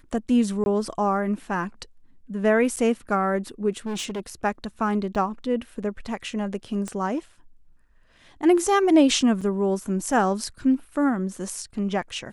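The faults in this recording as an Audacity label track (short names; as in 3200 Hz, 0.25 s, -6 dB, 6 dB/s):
0.640000	0.660000	gap 21 ms
2.760000	2.770000	gap 7.9 ms
3.860000	4.200000	clipped -26 dBFS
5.150000	5.150000	gap 3.2 ms
6.880000	6.880000	pop -19 dBFS
9.410000	9.420000	gap 5.8 ms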